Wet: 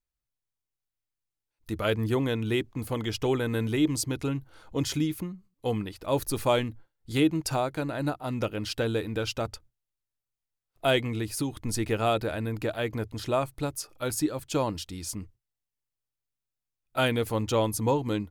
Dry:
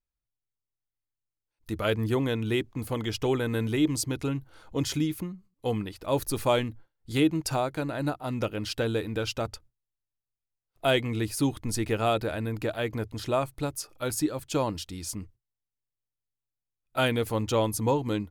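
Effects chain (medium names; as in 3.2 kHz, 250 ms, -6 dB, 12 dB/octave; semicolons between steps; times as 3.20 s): 11.07–11.57 s: compression, threshold -26 dBFS, peak gain reduction 6 dB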